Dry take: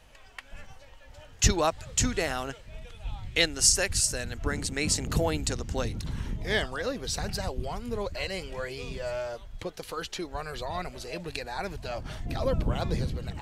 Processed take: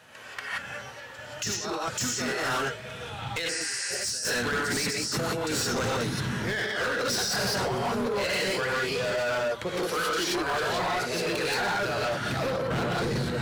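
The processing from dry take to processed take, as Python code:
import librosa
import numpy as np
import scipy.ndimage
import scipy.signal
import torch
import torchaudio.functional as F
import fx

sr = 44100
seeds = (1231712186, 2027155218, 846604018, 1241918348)

p1 = scipy.signal.sosfilt(scipy.signal.butter(4, 110.0, 'highpass', fs=sr, output='sos'), x)
p2 = fx.peak_eq(p1, sr, hz=1500.0, db=9.0, octaves=0.52)
p3 = fx.hum_notches(p2, sr, base_hz=50, count=3)
p4 = fx.rev_gated(p3, sr, seeds[0], gate_ms=200, shape='rising', drr_db=-6.0)
p5 = fx.dynamic_eq(p4, sr, hz=5300.0, q=3.4, threshold_db=-40.0, ratio=4.0, max_db=8)
p6 = fx.over_compress(p5, sr, threshold_db=-26.0, ratio=-1.0)
p7 = np.clip(p6, -10.0 ** (-25.0 / 20.0), 10.0 ** (-25.0 / 20.0))
p8 = p7 + fx.echo_single(p7, sr, ms=415, db=-23.5, dry=0)
y = fx.spec_repair(p8, sr, seeds[1], start_s=3.51, length_s=0.47, low_hz=770.0, high_hz=9800.0, source='after')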